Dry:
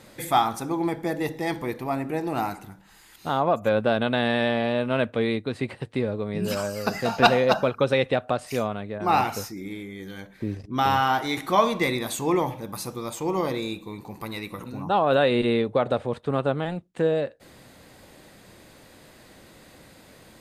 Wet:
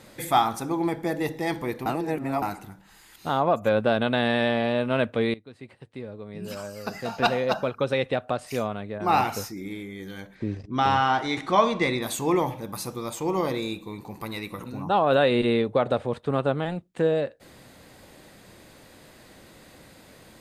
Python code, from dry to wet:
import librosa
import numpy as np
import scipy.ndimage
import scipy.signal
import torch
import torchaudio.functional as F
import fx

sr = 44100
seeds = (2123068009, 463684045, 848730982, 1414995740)

y = fx.bessel_lowpass(x, sr, hz=6300.0, order=6, at=(10.34, 12.01), fade=0.02)
y = fx.edit(y, sr, fx.reverse_span(start_s=1.86, length_s=0.56),
    fx.fade_in_from(start_s=5.34, length_s=3.99, floor_db=-18.5), tone=tone)